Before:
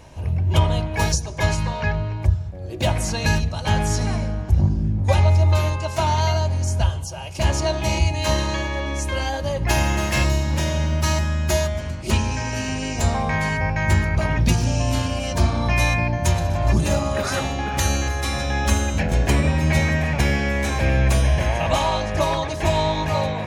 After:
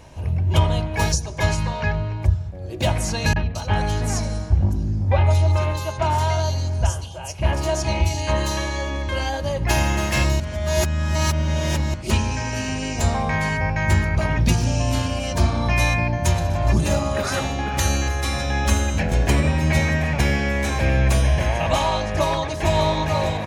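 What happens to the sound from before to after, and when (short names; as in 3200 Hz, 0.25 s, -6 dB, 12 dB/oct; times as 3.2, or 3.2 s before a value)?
3.33–9.09 three bands offset in time lows, mids, highs 30/220 ms, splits 160/3300 Hz
10.4–11.94 reverse
17.31–20.01 feedback echo 87 ms, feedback 37%, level -20 dB
22.09–22.77 echo throw 0.6 s, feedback 30%, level -8 dB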